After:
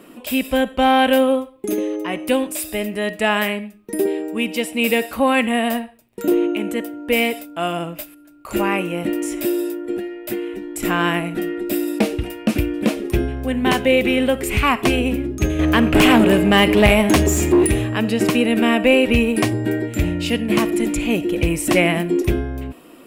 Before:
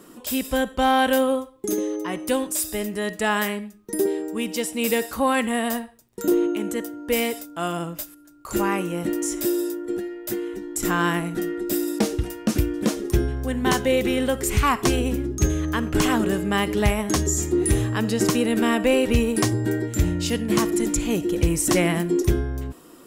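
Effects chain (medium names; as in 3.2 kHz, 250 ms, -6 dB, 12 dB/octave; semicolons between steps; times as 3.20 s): 15.59–17.67 s: waveshaping leveller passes 2; fifteen-band graphic EQ 250 Hz +5 dB, 630 Hz +7 dB, 2.5 kHz +11 dB, 6.3 kHz -7 dB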